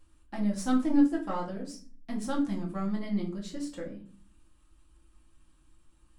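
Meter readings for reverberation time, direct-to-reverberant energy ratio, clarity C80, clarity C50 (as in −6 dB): 0.40 s, −3.5 dB, 15.0 dB, 10.0 dB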